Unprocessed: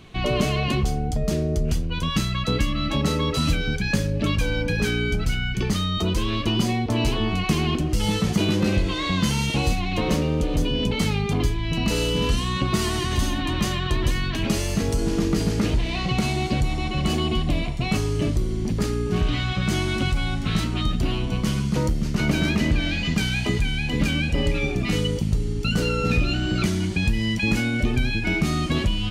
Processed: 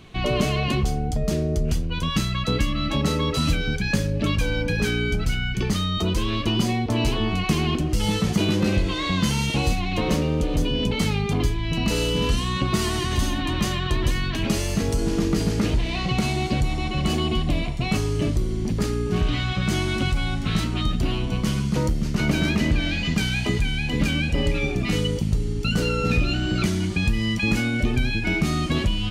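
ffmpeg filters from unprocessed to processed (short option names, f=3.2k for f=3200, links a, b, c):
-filter_complex "[0:a]asettb=1/sr,asplit=3[a][b][c];[a]atrim=end=26.904[d];[b]atrim=start=26.9:end=27.68,asetpts=PTS-STARTPTS,afade=t=in:d=0.004:c=qsin,afade=t=out:st=0.776:d=0.004:c=qsin,aeval=exprs='val(0)+0.00398*sin(2*PI*1200*n/s)':c=same[e];[c]atrim=start=27.676[f];[d][e]acrossfade=d=0.004:c1=hsin:c2=qsin[g];[g][f]acrossfade=d=0.004:c1=qsin:c2=hsin"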